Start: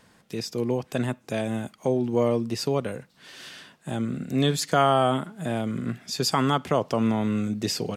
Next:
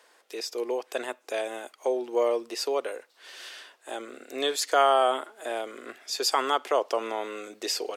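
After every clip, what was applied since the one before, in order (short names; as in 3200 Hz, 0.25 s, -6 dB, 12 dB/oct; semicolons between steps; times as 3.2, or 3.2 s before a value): inverse Chebyshev high-pass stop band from 190 Hz, stop band 40 dB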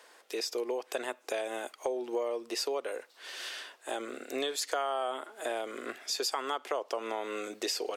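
compressor 5:1, threshold -33 dBFS, peak gain reduction 15 dB; gain +2.5 dB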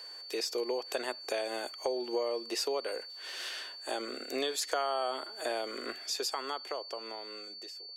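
ending faded out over 2.21 s; whine 4500 Hz -44 dBFS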